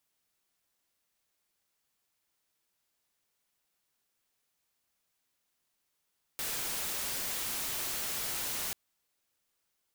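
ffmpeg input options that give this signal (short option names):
-f lavfi -i "anoisesrc=c=white:a=0.0291:d=2.34:r=44100:seed=1"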